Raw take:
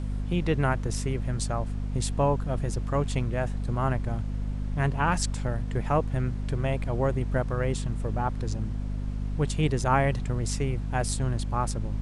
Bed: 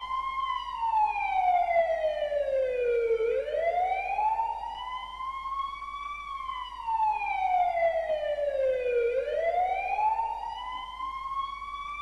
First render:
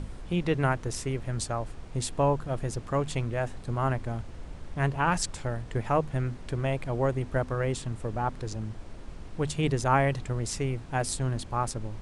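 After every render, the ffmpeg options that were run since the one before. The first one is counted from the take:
-af "bandreject=f=50:t=h:w=6,bandreject=f=100:t=h:w=6,bandreject=f=150:t=h:w=6,bandreject=f=200:t=h:w=6,bandreject=f=250:t=h:w=6"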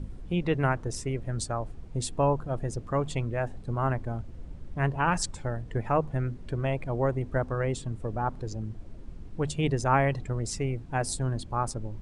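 -af "afftdn=nr=11:nf=-43"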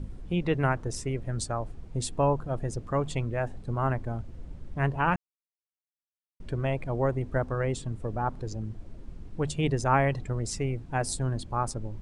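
-filter_complex "[0:a]asplit=3[a][b][c];[a]atrim=end=5.16,asetpts=PTS-STARTPTS,afade=t=out:st=5.156:d=0.004:c=hsin[d];[b]atrim=start=5.16:end=6.4,asetpts=PTS-STARTPTS,volume=0[e];[c]atrim=start=6.4,asetpts=PTS-STARTPTS,afade=t=in:d=0.004:c=hsin[f];[d][e][f]concat=n=3:v=0:a=1"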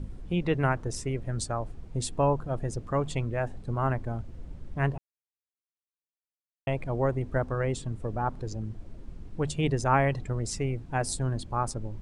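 -filter_complex "[0:a]asplit=3[a][b][c];[a]atrim=end=4.98,asetpts=PTS-STARTPTS,afade=t=out:st=4.976:d=0.004:c=hsin[d];[b]atrim=start=4.98:end=6.67,asetpts=PTS-STARTPTS,volume=0[e];[c]atrim=start=6.67,asetpts=PTS-STARTPTS,afade=t=in:d=0.004:c=hsin[f];[d][e][f]concat=n=3:v=0:a=1"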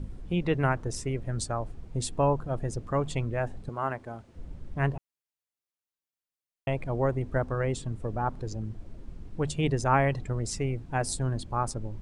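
-filter_complex "[0:a]asettb=1/sr,asplit=3[a][b][c];[a]atrim=end=3.694[d];[b]atrim=start=3.69:end=4.36,asetpts=PTS-STARTPTS,afade=t=in:d=0.004:c=qsin,afade=t=out:st=0.666:d=0.004:c=qsin,highpass=f=430:p=1[e];[c]atrim=start=4.356[f];[d][e]acrossfade=d=0.004:c1=hsin:c2=qsin[g];[g][f]acrossfade=d=0.004:c1=qsin:c2=hsin"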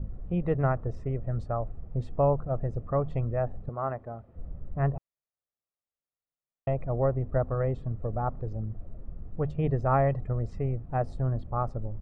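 -af "lowpass=1.1k,aecho=1:1:1.6:0.41"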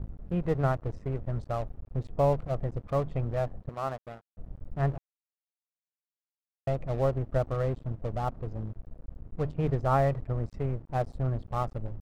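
-af "aeval=exprs='sgn(val(0))*max(abs(val(0))-0.00794,0)':c=same"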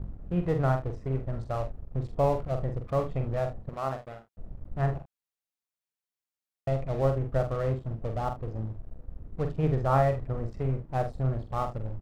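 -af "aecho=1:1:45|76:0.473|0.178"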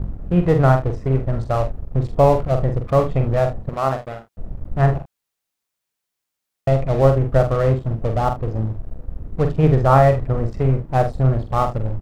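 -af "volume=11.5dB,alimiter=limit=-2dB:level=0:latency=1"

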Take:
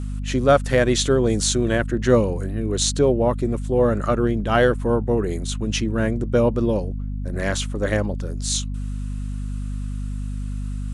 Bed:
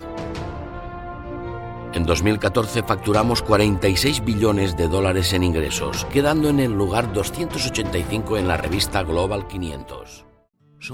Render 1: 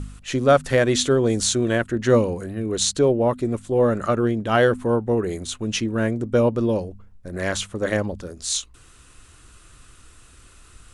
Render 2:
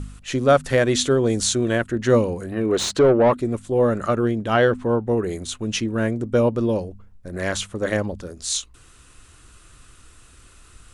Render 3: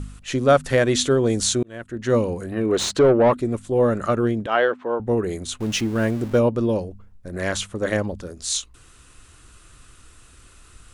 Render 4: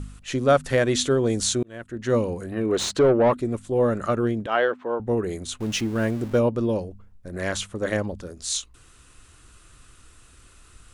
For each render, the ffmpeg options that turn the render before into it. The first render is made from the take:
-af "bandreject=f=50:t=h:w=4,bandreject=f=100:t=h:w=4,bandreject=f=150:t=h:w=4,bandreject=f=200:t=h:w=4,bandreject=f=250:t=h:w=4"
-filter_complex "[0:a]asettb=1/sr,asplit=3[a][b][c];[a]atrim=end=2.524[d];[b]atrim=start=2.52:end=3.37,asetpts=PTS-STARTPTS,afade=t=in:d=0.004:c=qsin,afade=t=out:st=0.846:d=0.004:c=qsin,asplit=2[e][f];[f]highpass=f=720:p=1,volume=19dB,asoftclip=type=tanh:threshold=-6dB[g];[e][g]amix=inputs=2:normalize=0,lowpass=f=1.4k:p=1,volume=-6dB[h];[c]atrim=start=3.366[i];[d][h]acrossfade=d=0.004:c1=hsin:c2=qsin[j];[j][i]acrossfade=d=0.004:c1=qsin:c2=hsin,asettb=1/sr,asplit=3[k][l][m];[k]atrim=end=4.544[n];[l]atrim=start=4.54:end=5.07,asetpts=PTS-STARTPTS,afade=t=in:d=0.004:c=qsin,afade=t=out:st=0.526:d=0.004:c=qsin,lowpass=5.7k[o];[m]atrim=start=5.066[p];[n][o]acrossfade=d=0.004:c1=hsin:c2=qsin[q];[q][p]acrossfade=d=0.004:c1=qsin:c2=hsin"
-filter_complex "[0:a]asettb=1/sr,asplit=3[a][b][c];[a]atrim=end=4.464[d];[b]atrim=start=4.46:end=5,asetpts=PTS-STARTPTS,afade=t=in:d=0.004:c=qsin,afade=t=out:st=0.536:d=0.004:c=qsin,highpass=450,lowpass=3.4k[e];[c]atrim=start=4.996[f];[d][e]acrossfade=d=0.004:c1=hsin:c2=qsin[g];[g][f]acrossfade=d=0.004:c1=qsin:c2=hsin,asettb=1/sr,asplit=3[h][i][j];[h]atrim=end=5.604[k];[i]atrim=start=5.6:end=6.39,asetpts=PTS-STARTPTS,afade=t=in:d=0.004:c=qsin,afade=t=out:st=0.786:d=0.004:c=qsin,aeval=exprs='val(0)+0.5*0.0211*sgn(val(0))':c=same[l];[j]atrim=start=6.386[m];[k][l]acrossfade=d=0.004:c1=hsin:c2=qsin[n];[n][m]acrossfade=d=0.004:c1=qsin:c2=hsin,asplit=2[o][p];[o]atrim=end=1.63,asetpts=PTS-STARTPTS,afade=t=out:st=1.626:d=0.004:c=hsin[q];[p]atrim=start=1.63,asetpts=PTS-STARTPTS,afade=t=in:d=0.69[r];[q][r]concat=n=2:v=0:a=1"
-af "volume=-2.5dB"

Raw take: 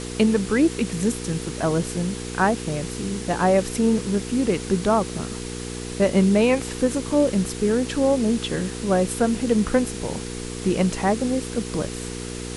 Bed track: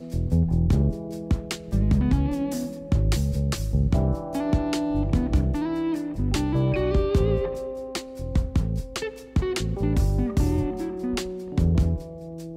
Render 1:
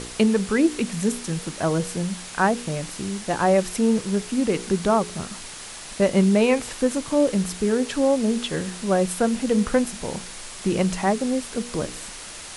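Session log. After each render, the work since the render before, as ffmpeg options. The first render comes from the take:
-af "bandreject=f=60:t=h:w=4,bandreject=f=120:t=h:w=4,bandreject=f=180:t=h:w=4,bandreject=f=240:t=h:w=4,bandreject=f=300:t=h:w=4,bandreject=f=360:t=h:w=4,bandreject=f=420:t=h:w=4,bandreject=f=480:t=h:w=4"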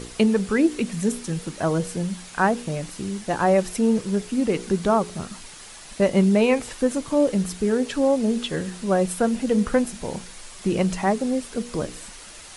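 -af "afftdn=nr=6:nf=-38"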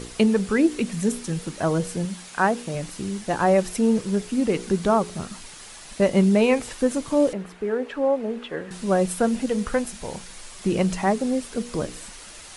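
-filter_complex "[0:a]asettb=1/sr,asplit=3[a][b][c];[a]atrim=end=2.054[d];[b]atrim=start=2.05:end=2.75,asetpts=PTS-STARTPTS,afade=t=in:d=0.004:c=qsin,afade=t=out:st=0.696:d=0.004:c=qsin,lowshelf=f=110:g=-11[e];[c]atrim=start=2.746[f];[d][e]acrossfade=d=0.004:c1=hsin:c2=qsin[g];[g][f]acrossfade=d=0.004:c1=qsin:c2=hsin,asettb=1/sr,asplit=3[h][i][j];[h]atrim=end=7.334[k];[i]atrim=start=7.33:end=8.71,asetpts=PTS-STARTPTS,afade=t=in:d=0.004:c=qsin,afade=t=out:st=1.376:d=0.004:c=qsin,acrossover=split=330 2600:gain=0.224 1 0.1[l][m][n];[l][m][n]amix=inputs=3:normalize=0[o];[j]atrim=start=8.706[p];[k][o]acrossfade=d=0.004:c1=hsin:c2=qsin[q];[q][p]acrossfade=d=0.004:c1=qsin:c2=hsin,asettb=1/sr,asplit=3[r][s][t];[r]atrim=end=9.464[u];[s]atrim=start=9.46:end=10.3,asetpts=PTS-STARTPTS,afade=t=in:d=0.004:c=qsin,afade=t=out:st=0.836:d=0.004:c=qsin,equalizer=f=240:w=0.63:g=-5.5[v];[t]atrim=start=10.296[w];[u][v]acrossfade=d=0.004:c1=hsin:c2=qsin[x];[x][w]acrossfade=d=0.004:c1=qsin:c2=hsin"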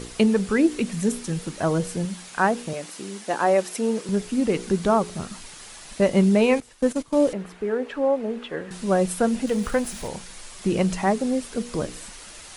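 -filter_complex "[0:a]asettb=1/sr,asplit=3[a][b][c];[a]atrim=end=2.734[d];[b]atrim=start=2.73:end=4.09,asetpts=PTS-STARTPTS,afade=t=in:d=0.004:c=qsin,afade=t=out:st=1.356:d=0.004:c=qsin,highpass=300[e];[c]atrim=start=4.086[f];[d][e]acrossfade=d=0.004:c1=hsin:c2=qsin[g];[g][f]acrossfade=d=0.004:c1=qsin:c2=hsin,asettb=1/sr,asplit=3[h][i][j];[h]atrim=end=6.604[k];[i]atrim=start=6.6:end=7.22,asetpts=PTS-STARTPTS,afade=t=in:d=0.004:c=qsin,afade=t=out:st=0.616:d=0.004:c=qsin,agate=range=-15dB:threshold=-29dB:ratio=16:release=100:detection=peak[l];[j]atrim=start=7.216[m];[k][l]acrossfade=d=0.004:c1=hsin:c2=qsin[n];[n][m]acrossfade=d=0.004:c1=qsin:c2=hsin,asettb=1/sr,asplit=3[o][p][q];[o]atrim=end=9.474[r];[p]atrim=start=9.47:end=10.08,asetpts=PTS-STARTPTS,afade=t=in:d=0.004:c=qsin,afade=t=out:st=0.606:d=0.004:c=qsin,aeval=exprs='val(0)+0.5*0.0126*sgn(val(0))':c=same[s];[q]atrim=start=10.076[t];[r][s]acrossfade=d=0.004:c1=hsin:c2=qsin[u];[u][t]acrossfade=d=0.004:c1=qsin:c2=hsin"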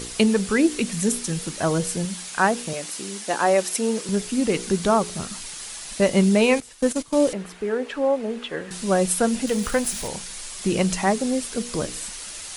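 -af "highshelf=f=2.7k:g=9"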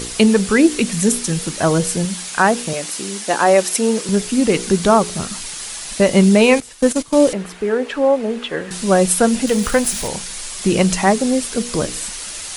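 -af "volume=6.5dB,alimiter=limit=-1dB:level=0:latency=1"

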